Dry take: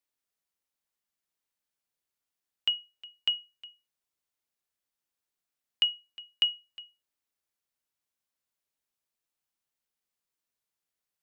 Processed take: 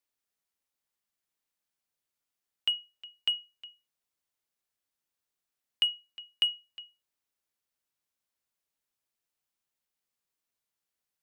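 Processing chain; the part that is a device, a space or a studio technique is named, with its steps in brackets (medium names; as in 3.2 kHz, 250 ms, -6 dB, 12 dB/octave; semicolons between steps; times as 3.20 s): parallel distortion (in parallel at -11.5 dB: hard clipper -27.5 dBFS, distortion -7 dB); on the sum: trim -2 dB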